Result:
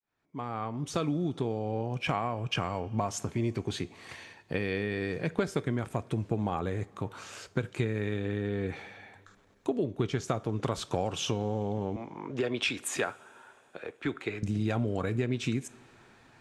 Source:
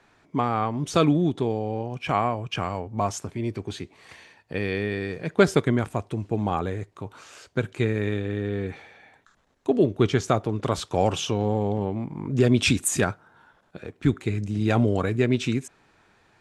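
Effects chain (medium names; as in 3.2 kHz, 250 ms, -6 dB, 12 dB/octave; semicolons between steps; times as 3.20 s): fade-in on the opening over 2.21 s; 11.96–14.43 s: three-band isolator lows -19 dB, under 370 Hz, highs -13 dB, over 4 kHz; compression 6:1, threshold -28 dBFS, peak gain reduction 15.5 dB; two-slope reverb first 0.31 s, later 3.3 s, from -18 dB, DRR 15.5 dB; trim +1.5 dB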